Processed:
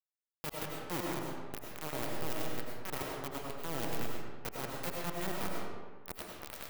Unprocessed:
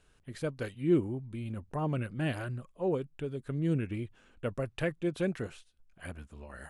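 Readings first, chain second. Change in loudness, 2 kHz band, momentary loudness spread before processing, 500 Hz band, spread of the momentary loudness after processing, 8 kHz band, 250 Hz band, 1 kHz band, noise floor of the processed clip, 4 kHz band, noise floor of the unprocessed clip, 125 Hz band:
−5.5 dB, −1.5 dB, 16 LU, −7.0 dB, 7 LU, can't be measured, −10.0 dB, +3.0 dB, below −85 dBFS, +5.5 dB, −66 dBFS, −11.5 dB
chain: dynamic equaliser 200 Hz, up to +3 dB, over −39 dBFS, Q 1.1
reversed playback
downward compressor 5 to 1, threshold −44 dBFS, peak gain reduction 22 dB
reversed playback
log-companded quantiser 2 bits
sine wavefolder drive 7 dB, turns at −24.5 dBFS
on a send: delay with a low-pass on its return 99 ms, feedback 35%, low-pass 1,400 Hz, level −6 dB
on the sum: comb and all-pass reverb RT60 1.4 s, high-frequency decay 0.65×, pre-delay 60 ms, DRR −1.5 dB
level +4.5 dB

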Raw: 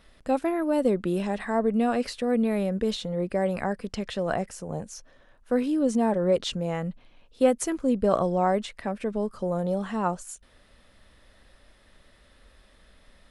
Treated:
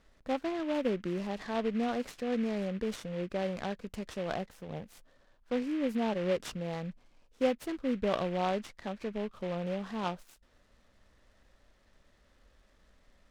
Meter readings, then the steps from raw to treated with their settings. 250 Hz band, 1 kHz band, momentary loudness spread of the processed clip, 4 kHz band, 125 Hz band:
−7.5 dB, −8.0 dB, 9 LU, −6.5 dB, −7.5 dB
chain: high-frequency loss of the air 110 metres
short delay modulated by noise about 1,900 Hz, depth 0.054 ms
level −7.5 dB

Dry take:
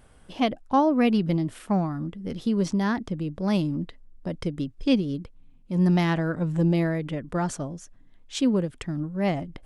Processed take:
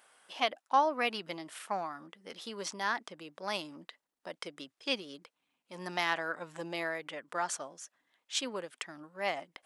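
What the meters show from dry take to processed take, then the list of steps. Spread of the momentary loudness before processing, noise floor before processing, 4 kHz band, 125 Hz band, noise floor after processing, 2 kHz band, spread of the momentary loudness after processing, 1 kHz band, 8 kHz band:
12 LU, −53 dBFS, 0.0 dB, −28.0 dB, below −85 dBFS, 0.0 dB, 18 LU, −3.0 dB, can't be measured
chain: high-pass filter 860 Hz 12 dB per octave

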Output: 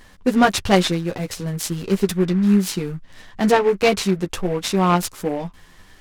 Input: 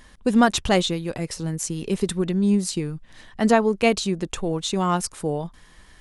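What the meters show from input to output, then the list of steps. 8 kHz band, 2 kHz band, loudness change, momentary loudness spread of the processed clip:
+1.0 dB, +3.5 dB, +3.0 dB, 11 LU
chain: flanger 1.5 Hz, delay 9.8 ms, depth 2 ms, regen 0%
short delay modulated by noise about 1,400 Hz, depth 0.032 ms
level +5.5 dB

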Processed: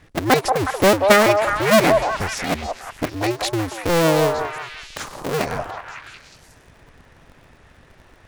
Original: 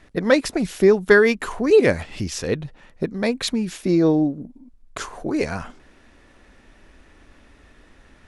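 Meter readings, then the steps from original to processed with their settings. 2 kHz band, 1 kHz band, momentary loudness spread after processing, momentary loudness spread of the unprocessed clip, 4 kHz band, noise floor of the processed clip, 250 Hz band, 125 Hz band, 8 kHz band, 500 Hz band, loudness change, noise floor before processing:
+2.0 dB, +12.5 dB, 18 LU, 17 LU, +6.0 dB, −52 dBFS, −2.5 dB, +2.5 dB, +6.0 dB, +0.5 dB, +1.5 dB, −53 dBFS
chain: sub-harmonics by changed cycles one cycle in 2, inverted
parametric band 200 Hz −4 dB 0.25 octaves
echo through a band-pass that steps 183 ms, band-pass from 750 Hz, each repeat 0.7 octaves, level −1 dB

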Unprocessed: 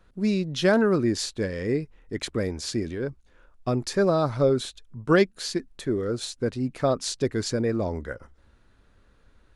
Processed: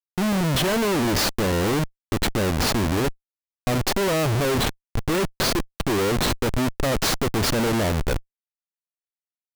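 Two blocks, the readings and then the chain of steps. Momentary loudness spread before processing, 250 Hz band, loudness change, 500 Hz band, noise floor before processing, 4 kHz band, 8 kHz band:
13 LU, +2.0 dB, +3.0 dB, 0.0 dB, −60 dBFS, +8.0 dB, +7.0 dB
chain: phase distortion by the signal itself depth 0.15 ms
comparator with hysteresis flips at −32.5 dBFS
level +5.5 dB

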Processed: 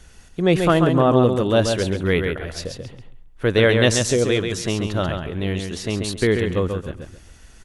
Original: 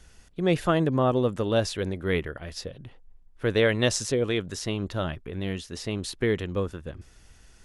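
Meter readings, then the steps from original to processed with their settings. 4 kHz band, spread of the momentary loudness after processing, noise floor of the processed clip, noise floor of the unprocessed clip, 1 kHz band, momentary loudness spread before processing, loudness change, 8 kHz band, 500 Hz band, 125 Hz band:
+7.0 dB, 15 LU, −47 dBFS, −54 dBFS, +7.0 dB, 14 LU, +7.0 dB, +7.0 dB, +7.0 dB, +7.5 dB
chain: notch filter 5,100 Hz, Q 18
on a send: repeating echo 136 ms, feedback 23%, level −5.5 dB
on the sum: level +6 dB

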